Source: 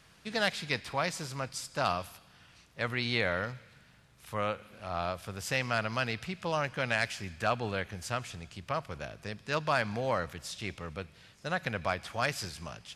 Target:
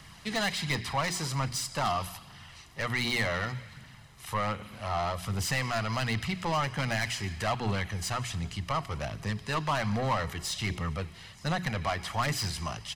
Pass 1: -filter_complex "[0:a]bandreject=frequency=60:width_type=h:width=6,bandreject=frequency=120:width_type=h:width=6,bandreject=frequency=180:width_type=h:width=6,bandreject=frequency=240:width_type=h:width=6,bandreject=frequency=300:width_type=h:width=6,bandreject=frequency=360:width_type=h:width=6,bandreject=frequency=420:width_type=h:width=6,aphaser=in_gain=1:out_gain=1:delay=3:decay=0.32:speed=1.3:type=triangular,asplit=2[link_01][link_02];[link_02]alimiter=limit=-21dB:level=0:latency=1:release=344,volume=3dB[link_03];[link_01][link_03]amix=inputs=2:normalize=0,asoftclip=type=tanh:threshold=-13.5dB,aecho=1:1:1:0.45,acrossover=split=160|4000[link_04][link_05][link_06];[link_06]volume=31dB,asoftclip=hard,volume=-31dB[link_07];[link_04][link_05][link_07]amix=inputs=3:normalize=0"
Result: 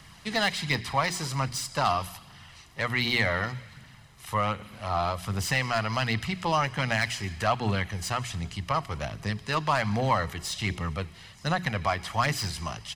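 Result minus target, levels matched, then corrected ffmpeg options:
soft clipping: distortion −11 dB
-filter_complex "[0:a]bandreject=frequency=60:width_type=h:width=6,bandreject=frequency=120:width_type=h:width=6,bandreject=frequency=180:width_type=h:width=6,bandreject=frequency=240:width_type=h:width=6,bandreject=frequency=300:width_type=h:width=6,bandreject=frequency=360:width_type=h:width=6,bandreject=frequency=420:width_type=h:width=6,aphaser=in_gain=1:out_gain=1:delay=3:decay=0.32:speed=1.3:type=triangular,asplit=2[link_01][link_02];[link_02]alimiter=limit=-21dB:level=0:latency=1:release=344,volume=3dB[link_03];[link_01][link_03]amix=inputs=2:normalize=0,asoftclip=type=tanh:threshold=-24dB,aecho=1:1:1:0.45,acrossover=split=160|4000[link_04][link_05][link_06];[link_06]volume=31dB,asoftclip=hard,volume=-31dB[link_07];[link_04][link_05][link_07]amix=inputs=3:normalize=0"

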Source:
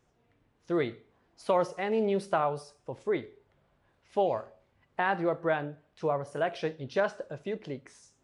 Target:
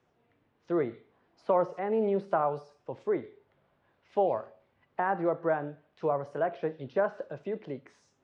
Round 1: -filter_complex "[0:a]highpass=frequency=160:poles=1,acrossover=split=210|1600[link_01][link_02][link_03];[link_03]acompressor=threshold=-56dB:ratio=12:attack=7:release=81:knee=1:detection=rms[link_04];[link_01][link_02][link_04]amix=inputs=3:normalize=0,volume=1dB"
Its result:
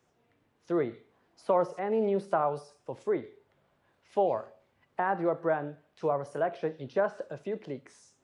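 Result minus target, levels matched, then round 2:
4,000 Hz band +3.5 dB
-filter_complex "[0:a]highpass=frequency=160:poles=1,acrossover=split=210|1600[link_01][link_02][link_03];[link_03]acompressor=threshold=-56dB:ratio=12:attack=7:release=81:knee=1:detection=rms,lowpass=3800[link_04];[link_01][link_02][link_04]amix=inputs=3:normalize=0,volume=1dB"

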